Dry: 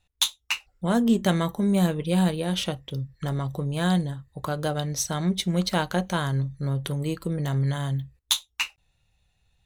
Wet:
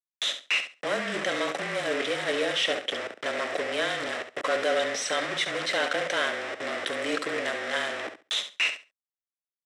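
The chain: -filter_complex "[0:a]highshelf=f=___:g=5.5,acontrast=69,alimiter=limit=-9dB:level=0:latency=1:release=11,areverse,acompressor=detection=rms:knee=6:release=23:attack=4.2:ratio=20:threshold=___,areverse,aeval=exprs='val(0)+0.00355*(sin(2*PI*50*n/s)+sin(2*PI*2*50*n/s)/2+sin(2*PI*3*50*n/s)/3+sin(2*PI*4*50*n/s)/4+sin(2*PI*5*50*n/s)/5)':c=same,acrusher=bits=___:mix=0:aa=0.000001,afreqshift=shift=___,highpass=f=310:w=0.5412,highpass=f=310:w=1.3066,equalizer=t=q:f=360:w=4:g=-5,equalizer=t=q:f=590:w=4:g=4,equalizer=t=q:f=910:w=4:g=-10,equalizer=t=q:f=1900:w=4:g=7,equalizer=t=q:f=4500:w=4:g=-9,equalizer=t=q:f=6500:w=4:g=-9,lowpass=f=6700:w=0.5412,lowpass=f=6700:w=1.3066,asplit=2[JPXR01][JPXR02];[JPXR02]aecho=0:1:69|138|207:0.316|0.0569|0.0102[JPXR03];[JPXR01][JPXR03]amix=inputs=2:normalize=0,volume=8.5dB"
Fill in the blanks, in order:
2600, -30dB, 5, -29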